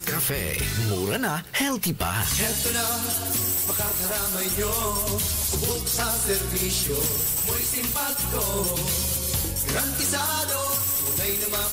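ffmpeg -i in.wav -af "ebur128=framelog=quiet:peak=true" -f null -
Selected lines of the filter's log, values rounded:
Integrated loudness:
  I:         -23.1 LUFS
  Threshold: -33.1 LUFS
Loudness range:
  LRA:         0.6 LU
  Threshold: -43.0 LUFS
  LRA low:   -23.4 LUFS
  LRA high:  -22.7 LUFS
True peak:
  Peak:      -13.6 dBFS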